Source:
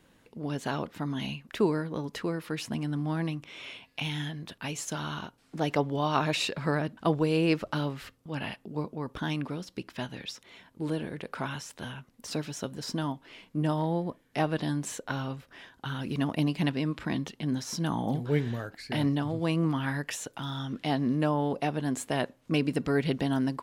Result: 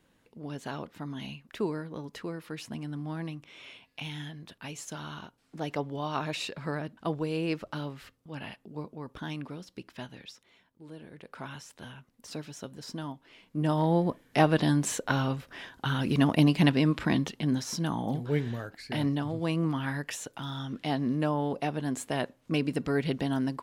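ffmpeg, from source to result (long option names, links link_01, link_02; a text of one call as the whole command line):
ffmpeg -i in.wav -af "volume=17dB,afade=type=out:start_time=10.01:duration=0.83:silence=0.266073,afade=type=in:start_time=10.84:duration=0.71:silence=0.281838,afade=type=in:start_time=13.42:duration=0.61:silence=0.266073,afade=type=out:start_time=16.97:duration=0.98:silence=0.446684" out.wav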